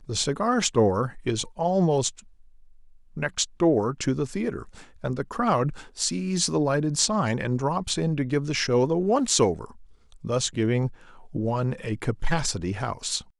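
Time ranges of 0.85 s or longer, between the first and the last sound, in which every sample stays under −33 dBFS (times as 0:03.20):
0:02.19–0:03.17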